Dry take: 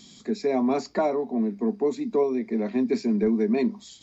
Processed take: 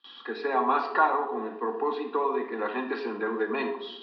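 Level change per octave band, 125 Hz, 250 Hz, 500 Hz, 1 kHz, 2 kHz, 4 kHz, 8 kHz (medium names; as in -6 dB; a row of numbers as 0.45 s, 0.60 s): under -15 dB, -11.5 dB, -4.5 dB, +8.0 dB, +9.0 dB, +1.5 dB, no reading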